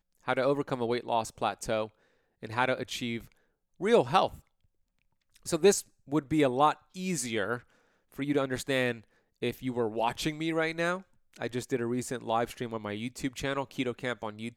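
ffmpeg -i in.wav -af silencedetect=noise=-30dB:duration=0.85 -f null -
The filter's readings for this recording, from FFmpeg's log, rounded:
silence_start: 4.27
silence_end: 5.48 | silence_duration: 1.20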